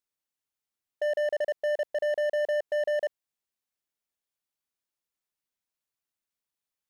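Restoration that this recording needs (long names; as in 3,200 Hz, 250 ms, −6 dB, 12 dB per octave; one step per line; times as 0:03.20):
clipped peaks rebuilt −25 dBFS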